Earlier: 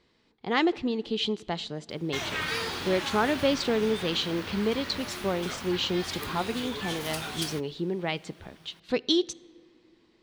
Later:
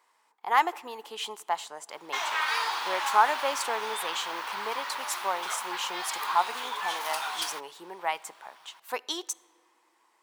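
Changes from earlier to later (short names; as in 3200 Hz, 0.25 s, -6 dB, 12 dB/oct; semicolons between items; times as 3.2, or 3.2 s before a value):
speech: remove synth low-pass 4100 Hz, resonance Q 2.7; master: add resonant high-pass 930 Hz, resonance Q 3.6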